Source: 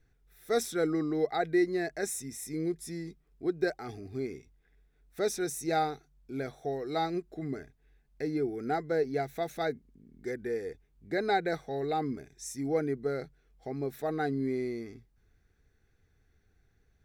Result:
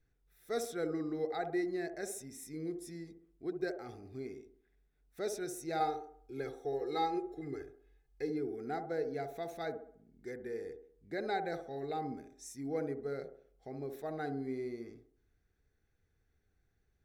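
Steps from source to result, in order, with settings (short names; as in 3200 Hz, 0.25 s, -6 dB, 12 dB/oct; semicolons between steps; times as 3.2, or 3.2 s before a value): 5.8–8.3 comb 2.4 ms, depth 98%; band-limited delay 66 ms, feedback 44%, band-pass 510 Hz, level -5.5 dB; gain -8 dB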